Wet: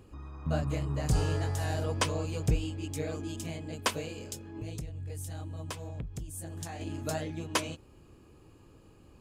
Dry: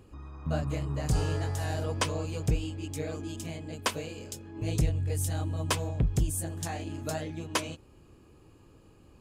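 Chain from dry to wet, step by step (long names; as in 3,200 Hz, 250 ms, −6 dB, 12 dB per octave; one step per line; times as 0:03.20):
0:04.45–0:06.81: downward compressor 10 to 1, threshold −36 dBFS, peak gain reduction 15.5 dB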